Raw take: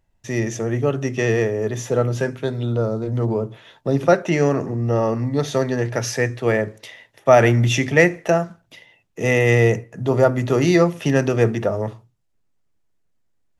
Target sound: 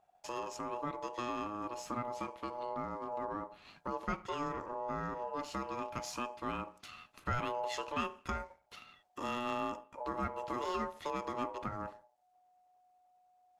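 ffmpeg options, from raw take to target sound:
-af "aeval=exprs='if(lt(val(0),0),0.708*val(0),val(0))':c=same,acompressor=threshold=-43dB:ratio=2,aeval=exprs='val(0)*sin(2*PI*730*n/s)':c=same,volume=-1.5dB"

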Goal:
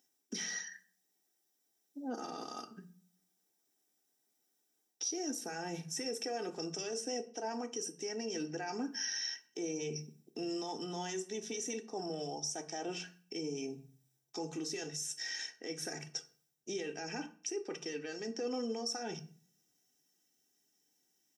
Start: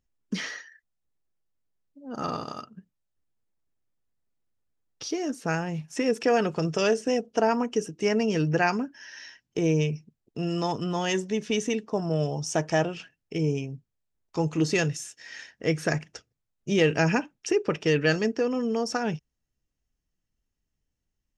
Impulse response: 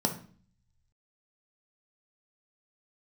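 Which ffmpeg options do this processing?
-filter_complex "[0:a]highpass=f=150:w=0.5412,highpass=f=150:w=1.3066,highshelf=f=3.5k:g=12,aecho=1:1:2.6:0.56,areverse,acompressor=threshold=-34dB:ratio=6,areverse,alimiter=level_in=10.5dB:limit=-24dB:level=0:latency=1:release=226,volume=-10.5dB,asplit=2[a][b];[1:a]atrim=start_sample=2205,lowshelf=f=360:g=-8,highshelf=f=4.9k:g=7.5[c];[b][c]afir=irnorm=-1:irlink=0,volume=-5.5dB[d];[a][d]amix=inputs=2:normalize=0,volume=-3dB"

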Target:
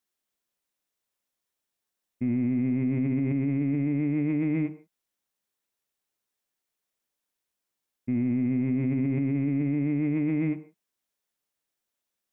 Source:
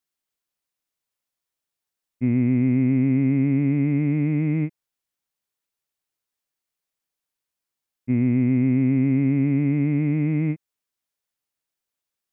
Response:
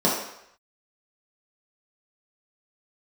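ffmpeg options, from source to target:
-filter_complex "[0:a]asplit=2[a][b];[1:a]atrim=start_sample=2205,afade=t=out:st=0.23:d=0.01,atrim=end_sample=10584[c];[b][c]afir=irnorm=-1:irlink=0,volume=-26.5dB[d];[a][d]amix=inputs=2:normalize=0,alimiter=limit=-20dB:level=0:latency=1:release=11"

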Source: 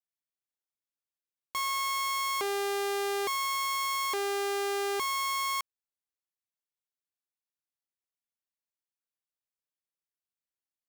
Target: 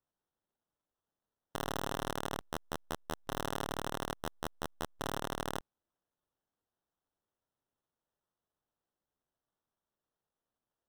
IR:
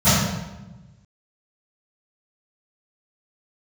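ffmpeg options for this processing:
-af "aderivative,acrusher=samples=19:mix=1:aa=0.000001,volume=-2dB"

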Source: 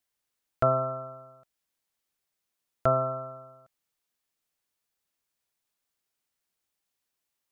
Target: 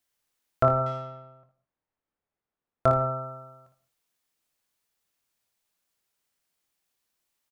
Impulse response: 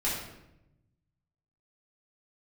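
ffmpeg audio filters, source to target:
-filter_complex "[0:a]asplit=2[a][b];[1:a]atrim=start_sample=2205,afade=t=out:st=0.15:d=0.01,atrim=end_sample=7056,adelay=88[c];[b][c]afir=irnorm=-1:irlink=0,volume=-22dB[d];[a][d]amix=inputs=2:normalize=0,asettb=1/sr,asplit=3[e][f][g];[e]atrim=end=0.864[h];[f]atrim=start=0.86:end=2.86,asetpts=PTS-STARTPTS,afade=t=in:d=0.004:c=qsin,afade=t=out:st=1.996:d=0.004:c=qsin,adynamicsmooth=sensitivity=8:basefreq=1.5k[i];[g]atrim=start=2.856[j];[h][i]acrossfade=d=0.004:c1=hsin:c2=qsin[k];[k][j]acrossfade=d=0.004:c1=qsin:c2=hsin,aecho=1:1:24|57|79:0.299|0.398|0.211,volume=2.5dB"

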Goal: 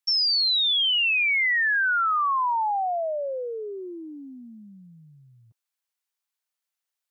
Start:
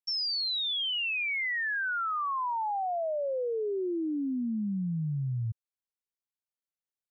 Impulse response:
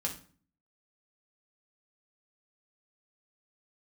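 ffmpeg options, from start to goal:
-af "acontrast=47,highpass=780,volume=3dB"

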